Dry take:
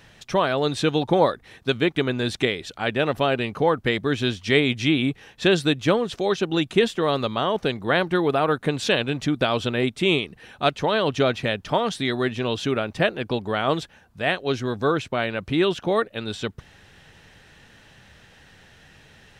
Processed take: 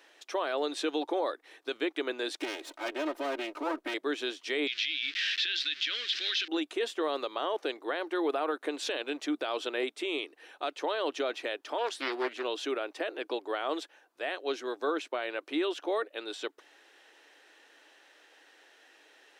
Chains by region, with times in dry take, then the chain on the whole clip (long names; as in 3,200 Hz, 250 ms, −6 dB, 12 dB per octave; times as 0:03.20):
0:02.39–0:03.94: lower of the sound and its delayed copy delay 3.2 ms + low-shelf EQ 260 Hz +9 dB + downward compressor 4 to 1, threshold −20 dBFS
0:04.67–0:06.48: converter with a step at zero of −28.5 dBFS + drawn EQ curve 100 Hz 0 dB, 300 Hz −17 dB, 880 Hz −28 dB, 1,600 Hz +7 dB, 3,500 Hz +15 dB, 5,100 Hz +9 dB, 11,000 Hz −25 dB
0:11.78–0:12.43: parametric band 120 Hz −4 dB 0.44 octaves + highs frequency-modulated by the lows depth 0.45 ms
whole clip: elliptic high-pass filter 300 Hz, stop band 40 dB; brickwall limiter −15.5 dBFS; level −6 dB